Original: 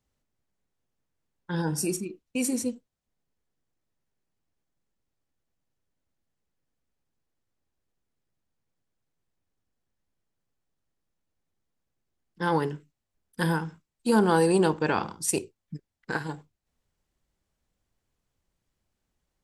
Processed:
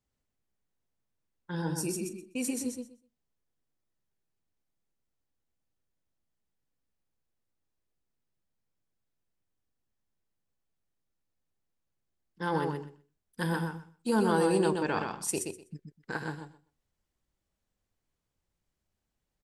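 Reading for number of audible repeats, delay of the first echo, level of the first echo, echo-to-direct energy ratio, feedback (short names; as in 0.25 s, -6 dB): 2, 0.125 s, -5.0 dB, -5.0 dB, 16%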